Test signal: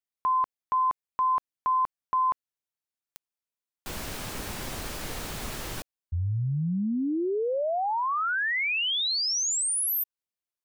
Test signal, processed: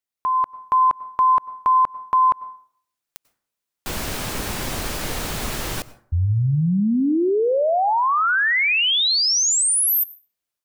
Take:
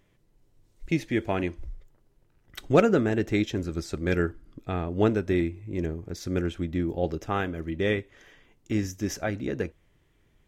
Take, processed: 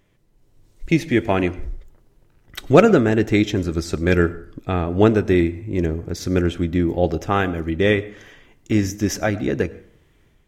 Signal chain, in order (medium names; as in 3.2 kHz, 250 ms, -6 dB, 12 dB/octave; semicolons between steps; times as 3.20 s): level rider gain up to 5.5 dB; plate-style reverb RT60 0.54 s, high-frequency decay 0.5×, pre-delay 85 ms, DRR 18.5 dB; trim +3 dB